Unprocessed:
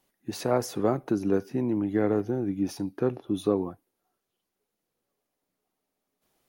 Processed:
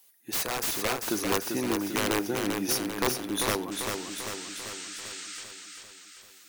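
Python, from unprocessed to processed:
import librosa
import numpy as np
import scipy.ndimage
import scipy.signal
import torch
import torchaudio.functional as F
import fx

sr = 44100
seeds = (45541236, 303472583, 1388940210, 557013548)

p1 = fx.tilt_eq(x, sr, slope=4.5)
p2 = (np.mod(10.0 ** (22.0 / 20.0) * p1 + 1.0, 2.0) - 1.0) / 10.0 ** (22.0 / 20.0)
p3 = fx.rider(p2, sr, range_db=10, speed_s=0.5)
p4 = fx.spec_paint(p3, sr, seeds[0], shape='noise', start_s=3.71, length_s=1.73, low_hz=1200.0, high_hz=8900.0, level_db=-44.0)
p5 = p4 + fx.echo_feedback(p4, sr, ms=393, feedback_pct=57, wet_db=-5, dry=0)
y = p5 * 10.0 ** (2.0 / 20.0)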